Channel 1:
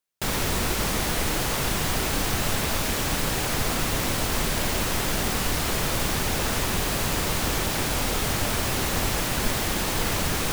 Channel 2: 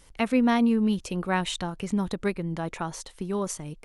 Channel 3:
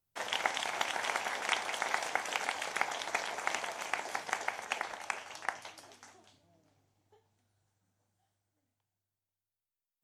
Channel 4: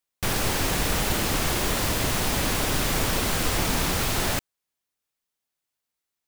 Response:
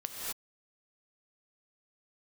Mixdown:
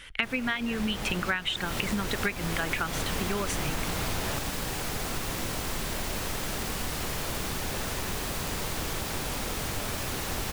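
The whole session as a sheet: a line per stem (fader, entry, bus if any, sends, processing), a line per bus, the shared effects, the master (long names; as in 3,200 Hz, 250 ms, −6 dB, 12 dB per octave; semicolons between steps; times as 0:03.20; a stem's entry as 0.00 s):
−10.5 dB, 1.35 s, send −5.5 dB, no processing
+2.0 dB, 0.00 s, send −23 dB, reverb reduction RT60 0.71 s; flat-topped bell 2,200 Hz +15.5 dB
muted
−5.0 dB, 0.00 s, no send, high-shelf EQ 4,800 Hz −7.5 dB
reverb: on, pre-delay 3 ms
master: downward compressor 20 to 1, threshold −25 dBFS, peak gain reduction 17.5 dB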